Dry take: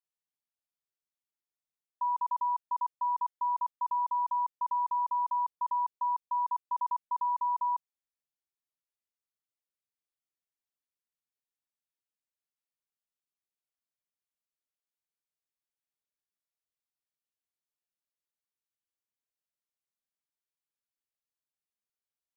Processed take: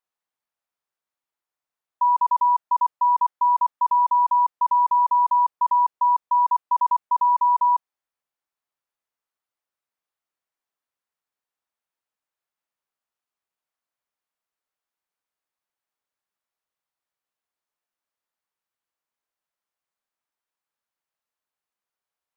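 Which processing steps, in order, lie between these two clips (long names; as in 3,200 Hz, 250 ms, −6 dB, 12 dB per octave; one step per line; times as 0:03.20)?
parametric band 1,000 Hz +11.5 dB 2.5 octaves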